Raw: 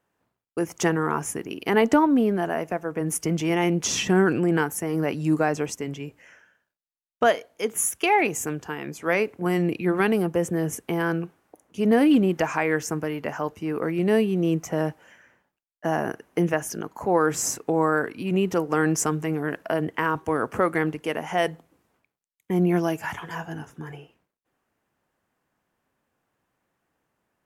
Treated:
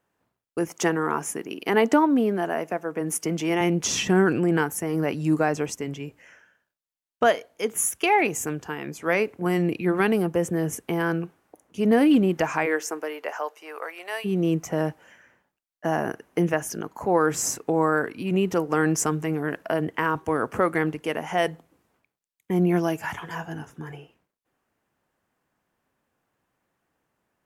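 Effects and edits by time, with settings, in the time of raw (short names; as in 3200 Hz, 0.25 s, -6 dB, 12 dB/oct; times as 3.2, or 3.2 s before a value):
0.68–3.61 HPF 190 Hz
12.65–14.24 HPF 290 Hz -> 800 Hz 24 dB/oct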